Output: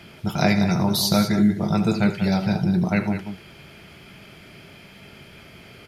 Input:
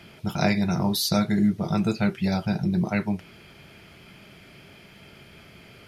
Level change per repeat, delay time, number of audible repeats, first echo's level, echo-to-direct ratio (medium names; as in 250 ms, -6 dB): no regular repeats, 78 ms, 2, -14.0 dB, -8.0 dB